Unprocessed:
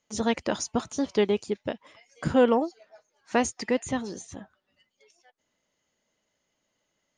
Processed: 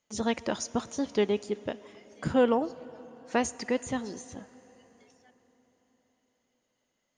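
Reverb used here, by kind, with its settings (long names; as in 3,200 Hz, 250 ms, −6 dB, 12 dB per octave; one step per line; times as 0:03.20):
dense smooth reverb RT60 4.7 s, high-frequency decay 0.8×, DRR 17.5 dB
level −3 dB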